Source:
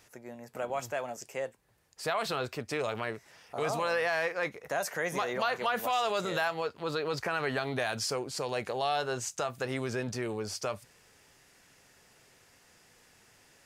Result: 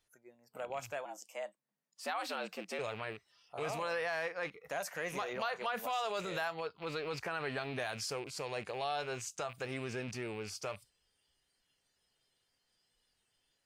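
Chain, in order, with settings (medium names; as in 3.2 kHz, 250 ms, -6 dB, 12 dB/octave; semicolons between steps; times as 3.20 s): rattle on loud lows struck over -44 dBFS, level -31 dBFS; 1.05–2.79 s: frequency shift +90 Hz; spectral noise reduction 15 dB; trim -6.5 dB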